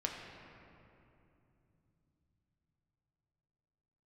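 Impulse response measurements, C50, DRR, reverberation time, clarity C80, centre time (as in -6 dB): 2.5 dB, -0.5 dB, 2.9 s, 3.5 dB, 92 ms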